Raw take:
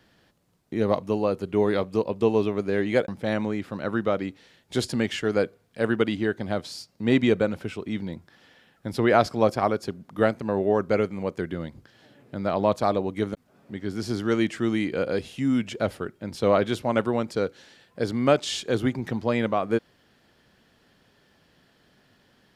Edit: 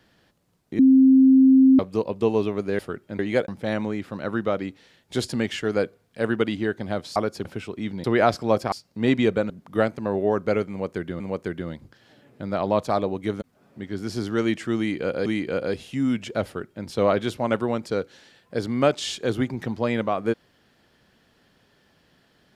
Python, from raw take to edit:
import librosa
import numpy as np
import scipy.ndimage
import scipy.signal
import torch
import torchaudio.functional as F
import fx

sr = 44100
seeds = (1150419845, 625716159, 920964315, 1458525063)

y = fx.edit(x, sr, fx.bleep(start_s=0.79, length_s=1.0, hz=264.0, db=-10.5),
    fx.swap(start_s=6.76, length_s=0.78, other_s=9.64, other_length_s=0.29),
    fx.cut(start_s=8.13, length_s=0.83),
    fx.repeat(start_s=11.13, length_s=0.5, count=2),
    fx.repeat(start_s=14.71, length_s=0.48, count=2),
    fx.duplicate(start_s=15.91, length_s=0.4, to_s=2.79), tone=tone)